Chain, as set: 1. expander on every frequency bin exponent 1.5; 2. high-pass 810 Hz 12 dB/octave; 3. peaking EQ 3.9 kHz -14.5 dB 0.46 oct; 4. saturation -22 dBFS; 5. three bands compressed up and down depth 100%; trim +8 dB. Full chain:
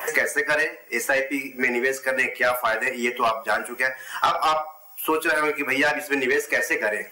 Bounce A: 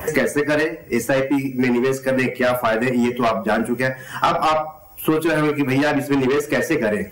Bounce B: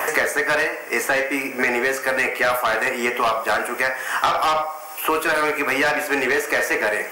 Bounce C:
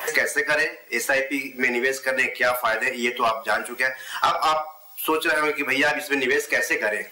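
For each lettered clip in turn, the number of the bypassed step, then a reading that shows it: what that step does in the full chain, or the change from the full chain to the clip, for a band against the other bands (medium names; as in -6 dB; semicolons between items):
2, 125 Hz band +19.5 dB; 1, crest factor change -2.5 dB; 3, 4 kHz band +3.0 dB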